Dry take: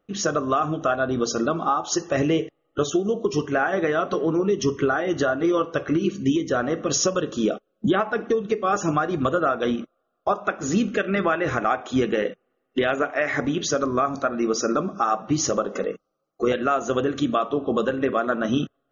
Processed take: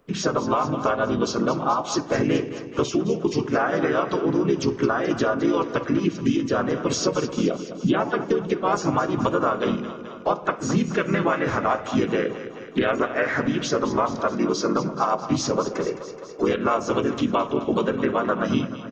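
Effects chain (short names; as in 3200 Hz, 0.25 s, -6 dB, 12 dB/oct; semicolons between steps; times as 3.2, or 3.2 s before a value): harmoniser -7 st -11 dB, -3 st -1 dB, +3 st -18 dB; split-band echo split 460 Hz, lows 0.157 s, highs 0.213 s, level -13.5 dB; three-band squash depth 40%; gain -3 dB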